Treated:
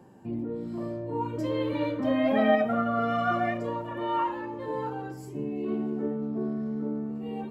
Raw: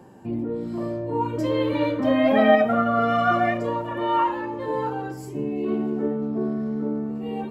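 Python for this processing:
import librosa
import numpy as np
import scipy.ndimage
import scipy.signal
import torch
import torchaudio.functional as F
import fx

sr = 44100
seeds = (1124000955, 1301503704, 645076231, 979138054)

y = fx.peak_eq(x, sr, hz=170.0, db=2.5, octaves=1.5)
y = F.gain(torch.from_numpy(y), -6.5).numpy()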